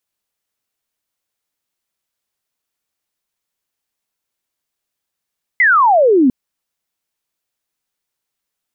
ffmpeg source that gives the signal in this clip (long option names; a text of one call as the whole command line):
ffmpeg -f lavfi -i "aevalsrc='0.422*clip(t/0.002,0,1)*clip((0.7-t)/0.002,0,1)*sin(2*PI*2100*0.7/log(240/2100)*(exp(log(240/2100)*t/0.7)-1))':duration=0.7:sample_rate=44100" out.wav